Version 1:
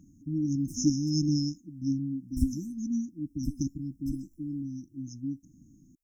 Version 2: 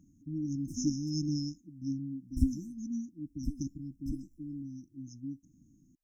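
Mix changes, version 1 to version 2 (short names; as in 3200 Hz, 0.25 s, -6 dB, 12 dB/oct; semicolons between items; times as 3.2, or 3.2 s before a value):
speech -6.0 dB; background: add high shelf 6100 Hz -10 dB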